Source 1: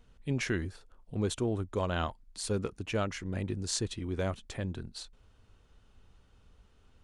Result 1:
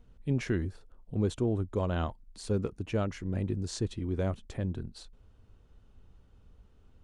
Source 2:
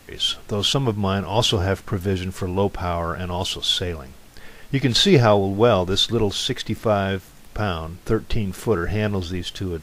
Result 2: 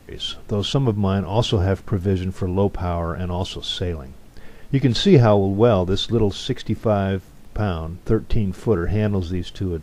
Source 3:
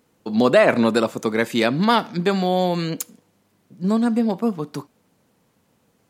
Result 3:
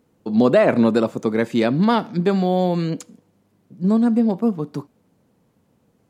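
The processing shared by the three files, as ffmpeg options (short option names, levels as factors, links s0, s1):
-filter_complex "[0:a]tiltshelf=f=790:g=5,acrossover=split=8800[s0][s1];[s1]acompressor=threshold=0.00178:ratio=4:attack=1:release=60[s2];[s0][s2]amix=inputs=2:normalize=0,volume=0.841"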